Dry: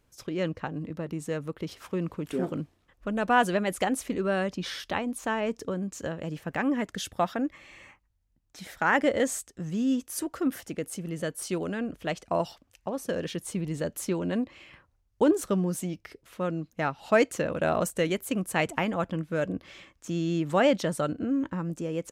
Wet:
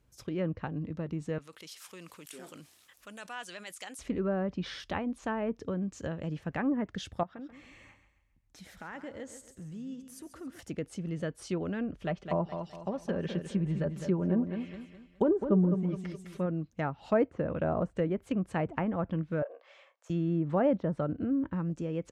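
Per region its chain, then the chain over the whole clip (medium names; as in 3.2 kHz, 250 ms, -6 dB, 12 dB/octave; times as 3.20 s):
1.38–3.99 s: differentiator + level flattener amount 50%
7.23–10.59 s: compression 2:1, threshold -48 dBFS + feedback delay 136 ms, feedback 40%, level -11 dB
12.01–16.46 s: comb 5.1 ms, depth 44% + feedback delay 208 ms, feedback 37%, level -8 dB
19.42–20.10 s: steep high-pass 520 Hz 48 dB/octave + tilt EQ -4 dB/octave + doubling 30 ms -10.5 dB
whole clip: high-pass 41 Hz; low-pass that closes with the level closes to 1.1 kHz, closed at -23 dBFS; bass shelf 160 Hz +10.5 dB; trim -5 dB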